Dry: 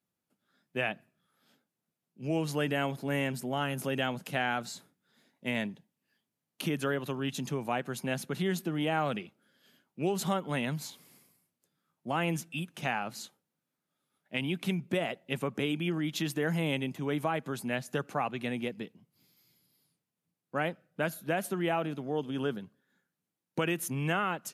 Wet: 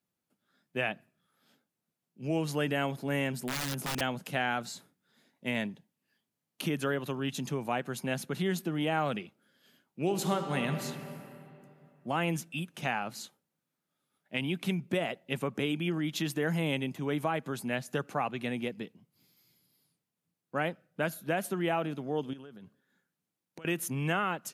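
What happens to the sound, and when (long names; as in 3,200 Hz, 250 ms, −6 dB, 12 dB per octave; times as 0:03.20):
0:03.33–0:04.01: wrap-around overflow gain 27.5 dB
0:10.00–0:10.84: thrown reverb, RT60 2.8 s, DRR 6 dB
0:22.33–0:23.65: downward compressor 16 to 1, threshold −44 dBFS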